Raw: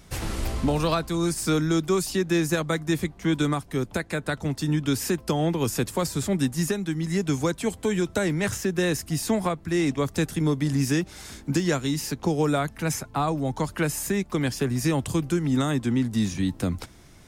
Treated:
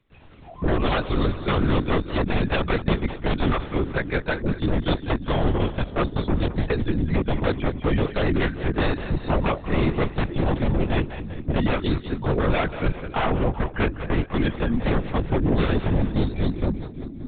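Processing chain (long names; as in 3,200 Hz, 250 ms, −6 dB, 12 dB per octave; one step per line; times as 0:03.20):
noise reduction from a noise print of the clip's start 24 dB
wave folding −20.5 dBFS
on a send: echo with a time of its own for lows and highs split 350 Hz, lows 573 ms, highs 195 ms, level −11 dB
on the sum: linear-prediction vocoder at 8 kHz whisper
level +5 dB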